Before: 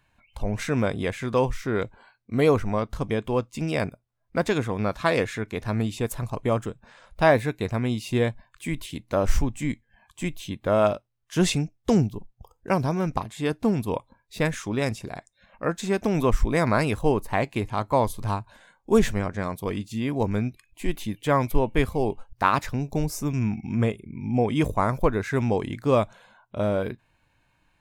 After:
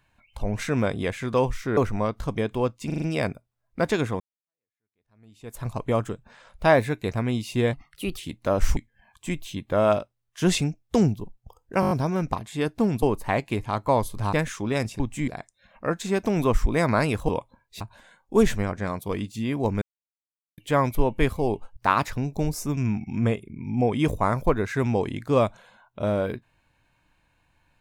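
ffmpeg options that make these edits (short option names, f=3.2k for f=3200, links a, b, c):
-filter_complex "[0:a]asplit=23[a][b][c][d][e][f][g][h][i][j][k][l][m][n][o][p][q][r][s][t][u][v][w];[a]atrim=end=1.772[x];[b]atrim=start=2.498:end=3.632[y];[c]atrim=start=3.588:end=3.632[z];[d]atrim=start=3.588:end=3.632[aa];[e]atrim=start=3.588:end=3.632[ab];[f]atrim=start=3.588:end=4.77,asetpts=PTS-STARTPTS,afade=t=out:st=1.178:d=0.004:c=hsin[ac];[g]atrim=start=4.77:end=8.304,asetpts=PTS-STARTPTS,afade=t=in:d=1.46:c=exp[ad];[h]atrim=start=8.3:end=8.84,asetpts=PTS-STARTPTS,asetrate=53361,aresample=44100[ae];[i]atrim=start=8.836:end=9.432[af];[j]atrim=start=9.708:end=12.772[ag];[k]atrim=start=12.748:end=12.772[ah];[l]atrim=start=12.748:end=12.772[ai];[m]atrim=start=12.748:end=12.772[aj];[n]atrim=start=12.748:end=12.772[ak];[o]atrim=start=12.748:end=13.872[al];[p]atrim=start=17.068:end=18.372[am];[q]atrim=start=14.388:end=15.062[an];[r]atrim=start=9.428:end=9.712[ao];[s]atrim=start=15.058:end=17.072[ap];[t]atrim=start=13.868:end=14.392[aq];[u]atrim=start=18.368:end=20.38,asetpts=PTS-STARTPTS,afade=t=out:st=2.008:d=0.004:c=hsin[ar];[v]atrim=start=20.38:end=21.14,asetpts=PTS-STARTPTS,volume=0[as];[w]atrim=start=21.14,asetpts=PTS-STARTPTS,afade=t=in:d=0.004:c=hsin[at];[x][y]acrossfade=d=0.004:c1=hsin:c2=hsin[au];[au][z]acrossfade=d=0.004:c1=hsin:c2=hsin[av];[av][aa]acrossfade=d=0.004:c1=hsin:c2=hsin[aw];[aw][ab]acrossfade=d=0.004:c1=hsin:c2=hsin[ax];[ac][ad]concat=n=2:v=0:a=1[ay];[ax][ay]acrossfade=d=0.004:c1=hsin:c2=hsin[az];[az][ae]acrossfade=d=0.004:c1=hsin:c2=hsin[ba];[ba][af]acrossfade=d=0.004:c1=hsin:c2=hsin[bb];[bb][ag]acrossfade=d=0.004:c1=hsin:c2=hsin[bc];[bc][ah]acrossfade=d=0.004:c1=hsin:c2=hsin[bd];[bd][ai]acrossfade=d=0.004:c1=hsin:c2=hsin[be];[be][aj]acrossfade=d=0.004:c1=hsin:c2=hsin[bf];[bf][ak]acrossfade=d=0.004:c1=hsin:c2=hsin[bg];[bg][al]acrossfade=d=0.004:c1=hsin:c2=hsin[bh];[bh][am]acrossfade=d=0.004:c1=hsin:c2=hsin[bi];[bi][an]acrossfade=d=0.004:c1=hsin:c2=hsin[bj];[bj][ao]acrossfade=d=0.004:c1=hsin:c2=hsin[bk];[bk][ap]acrossfade=d=0.004:c1=hsin:c2=hsin[bl];[bl][aq]acrossfade=d=0.004:c1=hsin:c2=hsin[bm];[ar][as][at]concat=n=3:v=0:a=1[bn];[bm][bn]acrossfade=d=0.004:c1=hsin:c2=hsin"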